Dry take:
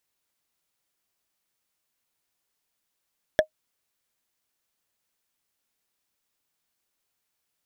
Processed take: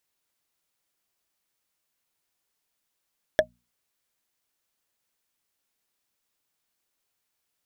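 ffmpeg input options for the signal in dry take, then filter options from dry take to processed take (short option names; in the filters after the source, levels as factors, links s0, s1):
-f lavfi -i "aevalsrc='0.335*pow(10,-3*t/0.09)*sin(2*PI*622*t)+0.188*pow(10,-3*t/0.027)*sin(2*PI*1714.9*t)+0.106*pow(10,-3*t/0.012)*sin(2*PI*3361.3*t)+0.0596*pow(10,-3*t/0.007)*sin(2*PI*5556.3*t)+0.0335*pow(10,-3*t/0.004)*sin(2*PI*8297.5*t)':d=0.45:s=44100"
-af "bandreject=f=60:t=h:w=6,bandreject=f=120:t=h:w=6,bandreject=f=180:t=h:w=6,bandreject=f=240:t=h:w=6"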